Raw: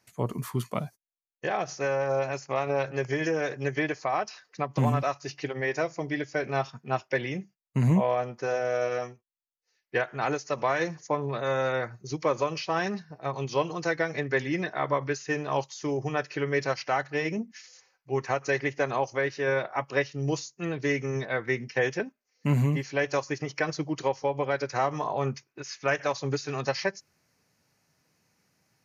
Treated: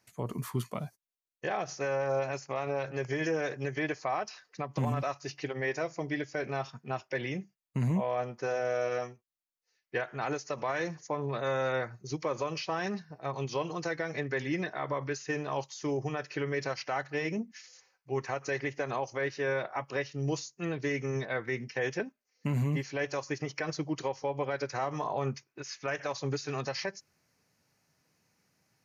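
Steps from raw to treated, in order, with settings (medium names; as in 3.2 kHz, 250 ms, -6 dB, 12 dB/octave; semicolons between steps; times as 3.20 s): peak limiter -19.5 dBFS, peak gain reduction 6.5 dB; trim -2.5 dB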